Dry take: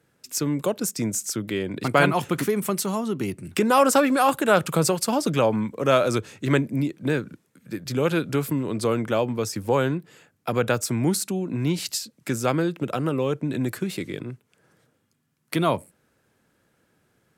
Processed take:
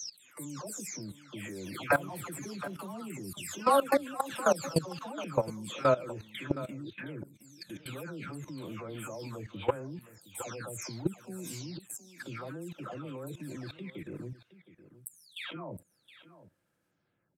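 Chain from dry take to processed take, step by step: spectral delay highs early, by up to 0.465 s; notch 420 Hz, Q 12; level quantiser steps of 19 dB; on a send: echo 0.717 s -15.5 dB; on the sum: gain -3 dB

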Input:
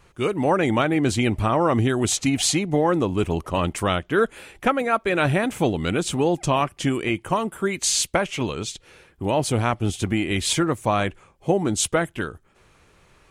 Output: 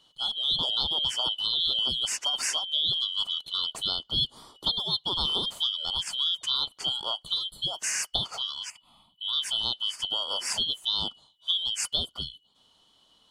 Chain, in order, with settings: four-band scrambler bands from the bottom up 2413; 8.7–9.33 fixed phaser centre 1600 Hz, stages 6; gain -7.5 dB

